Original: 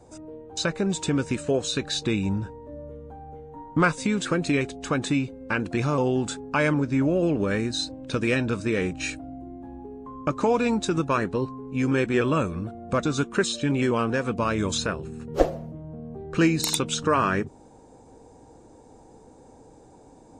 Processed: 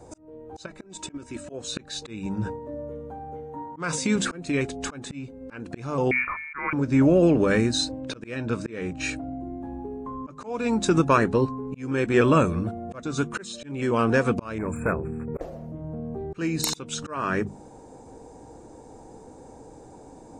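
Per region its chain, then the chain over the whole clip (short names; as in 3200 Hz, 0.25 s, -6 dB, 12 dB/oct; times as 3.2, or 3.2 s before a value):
0.66–1.53 level quantiser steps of 11 dB + comb 3.1 ms, depth 58%
2.26–4.16 HPF 96 Hz + dynamic EQ 5500 Hz, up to +6 dB, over -49 dBFS, Q 1.1 + sustainer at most 73 dB/s
6.11–6.73 HPF 340 Hz 6 dB/oct + bell 1200 Hz +10 dB 0.81 oct + inverted band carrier 2600 Hz
8–9.44 HPF 41 Hz + high shelf 9100 Hz -10 dB
14.58–15.41 bell 8400 Hz -12.5 dB 1.4 oct + hard clip -22 dBFS + brick-wall FIR band-stop 2600–7100 Hz
whole clip: bell 3400 Hz -3 dB 0.98 oct; notches 50/100/150/200/250 Hz; auto swell 0.496 s; gain +5 dB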